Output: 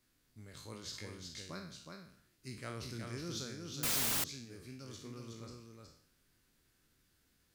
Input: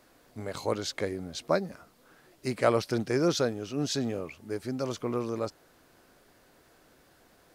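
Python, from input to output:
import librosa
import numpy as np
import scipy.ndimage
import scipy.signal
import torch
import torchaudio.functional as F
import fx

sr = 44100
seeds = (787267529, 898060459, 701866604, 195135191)

y = fx.spec_trails(x, sr, decay_s=0.58)
y = fx.tone_stack(y, sr, knobs='6-0-2')
y = y + 10.0 ** (-4.5 / 20.0) * np.pad(y, (int(368 * sr / 1000.0), 0))[:len(y)]
y = fx.quant_dither(y, sr, seeds[0], bits=6, dither='triangular', at=(3.83, 4.24))
y = y * 10.0 ** (2.5 / 20.0)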